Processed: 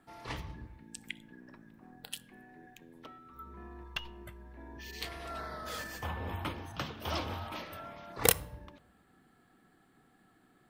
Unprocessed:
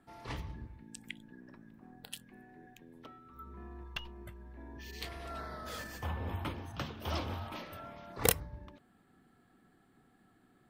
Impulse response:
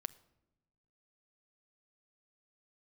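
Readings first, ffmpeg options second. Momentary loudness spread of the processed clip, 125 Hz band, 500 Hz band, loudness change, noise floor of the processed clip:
20 LU, -1.5 dB, +1.5 dB, +2.5 dB, -67 dBFS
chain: -filter_complex "[0:a]asplit=2[s0][s1];[1:a]atrim=start_sample=2205,lowshelf=f=350:g=-7.5[s2];[s1][s2]afir=irnorm=-1:irlink=0,volume=2.99[s3];[s0][s3]amix=inputs=2:normalize=0,volume=0.447"

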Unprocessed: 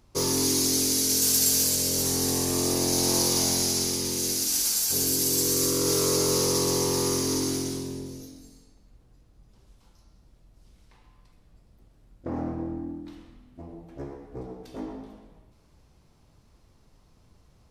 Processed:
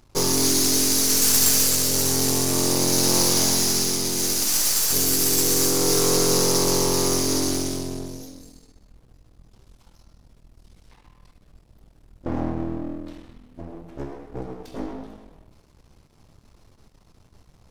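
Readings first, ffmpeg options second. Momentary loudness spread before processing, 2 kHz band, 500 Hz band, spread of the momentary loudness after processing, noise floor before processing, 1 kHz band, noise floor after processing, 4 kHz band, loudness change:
19 LU, +7.0 dB, +3.5 dB, 19 LU, -60 dBFS, +5.5 dB, -58 dBFS, +4.0 dB, +4.0 dB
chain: -af "aeval=exprs='if(lt(val(0),0),0.251*val(0),val(0))':c=same,volume=2.37"

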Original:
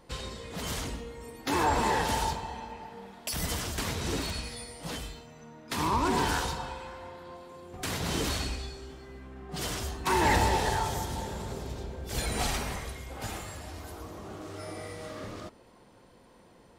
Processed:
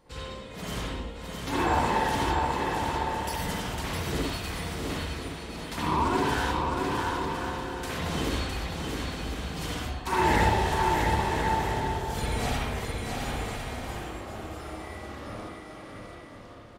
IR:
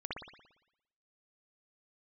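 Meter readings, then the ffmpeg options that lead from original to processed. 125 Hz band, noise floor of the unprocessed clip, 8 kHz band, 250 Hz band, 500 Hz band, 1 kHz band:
+4.0 dB, -57 dBFS, -3.0 dB, +4.0 dB, +3.5 dB, +4.0 dB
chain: -filter_complex "[0:a]aecho=1:1:660|1056|1294|1436|1522:0.631|0.398|0.251|0.158|0.1[s0];[1:a]atrim=start_sample=2205,afade=t=out:st=0.2:d=0.01,atrim=end_sample=9261[s1];[s0][s1]afir=irnorm=-1:irlink=0"

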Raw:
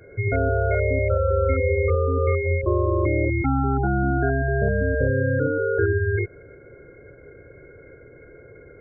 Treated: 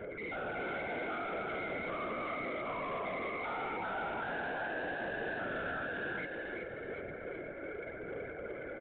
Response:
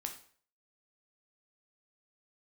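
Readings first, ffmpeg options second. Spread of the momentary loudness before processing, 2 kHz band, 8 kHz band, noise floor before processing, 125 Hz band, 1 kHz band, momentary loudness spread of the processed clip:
2 LU, -8.5 dB, no reading, -47 dBFS, -30.0 dB, -8.5 dB, 6 LU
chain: -filter_complex "[0:a]afftfilt=real='hypot(re,im)*cos(2*PI*random(0))':imag='hypot(re,im)*sin(2*PI*random(1))':win_size=512:overlap=0.75,asplit=2[s0][s1];[s1]acompressor=threshold=0.00708:ratio=5,volume=0.841[s2];[s0][s2]amix=inputs=2:normalize=0,alimiter=limit=0.112:level=0:latency=1:release=122,aphaser=in_gain=1:out_gain=1:delay=3.5:decay=0.46:speed=0.86:type=sinusoidal,afftfilt=real='re*lt(hypot(re,im),0.141)':imag='im*lt(hypot(re,im),0.141)':win_size=1024:overlap=0.75,asplit=2[s3][s4];[s4]highpass=f=720:p=1,volume=8.91,asoftclip=type=tanh:threshold=0.075[s5];[s3][s5]amix=inputs=2:normalize=0,lowpass=f=1300:p=1,volume=0.501,asoftclip=type=tanh:threshold=0.0282,asplit=6[s6][s7][s8][s9][s10][s11];[s7]adelay=376,afreqshift=49,volume=0.668[s12];[s8]adelay=752,afreqshift=98,volume=0.254[s13];[s9]adelay=1128,afreqshift=147,volume=0.0966[s14];[s10]adelay=1504,afreqshift=196,volume=0.0367[s15];[s11]adelay=1880,afreqshift=245,volume=0.014[s16];[s6][s12][s13][s14][s15][s16]amix=inputs=6:normalize=0,aresample=8000,aresample=44100,volume=0.596"

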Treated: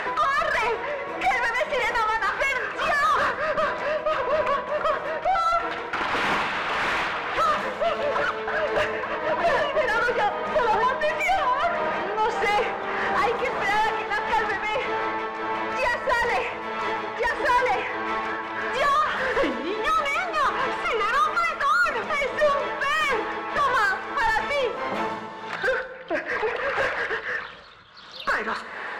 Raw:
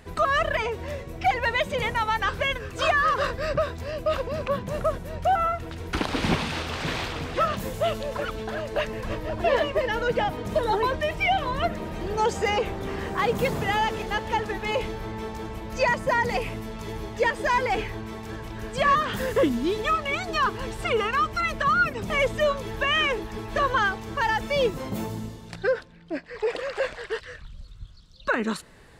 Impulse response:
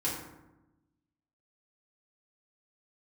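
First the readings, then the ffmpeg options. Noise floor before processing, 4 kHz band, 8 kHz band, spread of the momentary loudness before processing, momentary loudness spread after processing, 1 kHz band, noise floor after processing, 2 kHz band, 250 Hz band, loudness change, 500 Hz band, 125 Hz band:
-45 dBFS, -0.5 dB, -1.0 dB, 11 LU, 6 LU, +3.5 dB, -35 dBFS, +3.5 dB, -5.0 dB, +2.0 dB, +0.5 dB, -11.5 dB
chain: -filter_complex "[0:a]acompressor=mode=upward:threshold=0.0562:ratio=2.5,tremolo=f=1.6:d=0.55,bandpass=f=1600:t=q:w=0.87:csg=0,asplit=2[s0][s1];[s1]highpass=f=720:p=1,volume=20,asoftclip=type=tanh:threshold=0.2[s2];[s0][s2]amix=inputs=2:normalize=0,lowpass=f=1200:p=1,volume=0.501,asplit=2[s3][s4];[1:a]atrim=start_sample=2205,asetrate=28665,aresample=44100[s5];[s4][s5]afir=irnorm=-1:irlink=0,volume=0.158[s6];[s3][s6]amix=inputs=2:normalize=0"

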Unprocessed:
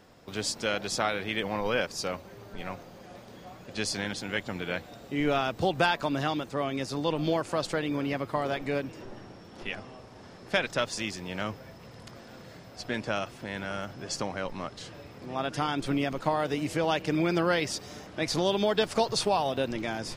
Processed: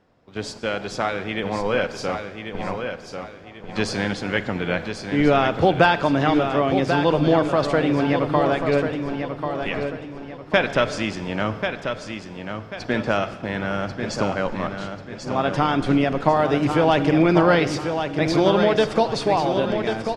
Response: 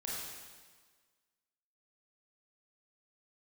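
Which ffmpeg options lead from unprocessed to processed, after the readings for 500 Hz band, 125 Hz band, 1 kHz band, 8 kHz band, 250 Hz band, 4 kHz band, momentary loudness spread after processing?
+9.5 dB, +10.5 dB, +9.0 dB, -2.0 dB, +10.5 dB, +3.5 dB, 15 LU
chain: -filter_complex "[0:a]dynaudnorm=f=920:g=5:m=1.78,agate=range=0.316:threshold=0.0141:ratio=16:detection=peak,aemphasis=mode=reproduction:type=75fm,aecho=1:1:1090|2180|3270|4360:0.447|0.156|0.0547|0.0192,asplit=2[s0][s1];[1:a]atrim=start_sample=2205[s2];[s1][s2]afir=irnorm=-1:irlink=0,volume=0.237[s3];[s0][s3]amix=inputs=2:normalize=0,volume=1.41"

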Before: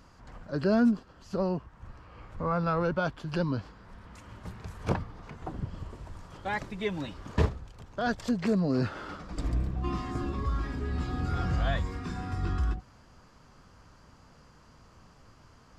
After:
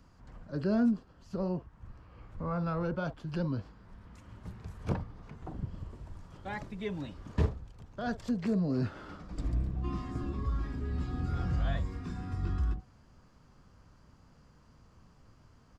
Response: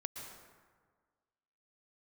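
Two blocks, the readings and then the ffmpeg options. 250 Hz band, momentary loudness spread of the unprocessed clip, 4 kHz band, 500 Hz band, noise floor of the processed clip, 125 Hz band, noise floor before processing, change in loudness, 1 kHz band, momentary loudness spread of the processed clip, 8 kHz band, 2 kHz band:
-3.0 dB, 18 LU, -8.0 dB, -6.0 dB, -61 dBFS, -2.0 dB, -57 dBFS, -3.5 dB, -7.5 dB, 18 LU, no reading, -8.0 dB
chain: -filter_complex "[0:a]acrossover=split=320|1000|1500[s0][s1][s2][s3];[s0]acontrast=54[s4];[s1]asplit=2[s5][s6];[s6]adelay=44,volume=0.562[s7];[s5][s7]amix=inputs=2:normalize=0[s8];[s4][s8][s2][s3]amix=inputs=4:normalize=0,volume=0.398"

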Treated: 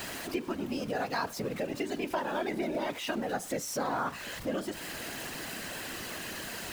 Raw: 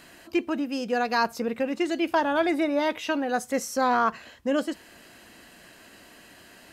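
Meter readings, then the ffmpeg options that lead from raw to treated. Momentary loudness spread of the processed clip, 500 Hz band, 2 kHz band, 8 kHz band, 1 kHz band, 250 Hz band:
5 LU, -7.0 dB, -6.0 dB, +0.5 dB, -9.0 dB, -8.0 dB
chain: -af "aeval=exprs='val(0)+0.5*0.0237*sgn(val(0))':c=same,afftfilt=real='hypot(re,im)*cos(2*PI*random(0))':imag='hypot(re,im)*sin(2*PI*random(1))':win_size=512:overlap=0.75,acompressor=threshold=0.0112:ratio=2,volume=1.58"

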